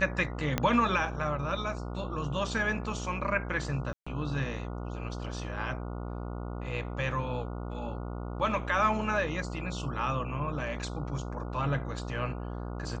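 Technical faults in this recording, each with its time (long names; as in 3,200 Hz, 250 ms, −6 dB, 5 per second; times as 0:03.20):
mains buzz 60 Hz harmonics 24 −37 dBFS
0:00.58: click −12 dBFS
0:03.93–0:04.07: drop-out 135 ms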